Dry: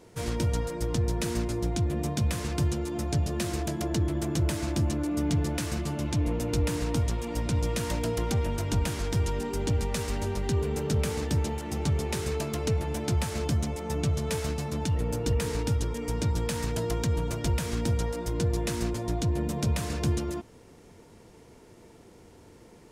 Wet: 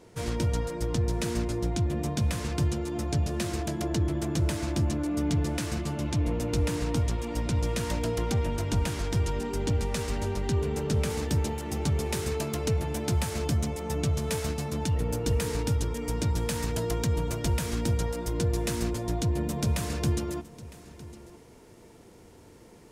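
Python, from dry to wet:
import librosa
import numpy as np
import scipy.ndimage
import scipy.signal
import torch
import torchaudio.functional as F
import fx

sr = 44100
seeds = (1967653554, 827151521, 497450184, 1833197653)

y = fx.high_shelf(x, sr, hz=11000.0, db=fx.steps((0.0, -4.0), (11.09, 5.0)))
y = y + 10.0 ** (-18.5 / 20.0) * np.pad(y, (int(958 * sr / 1000.0), 0))[:len(y)]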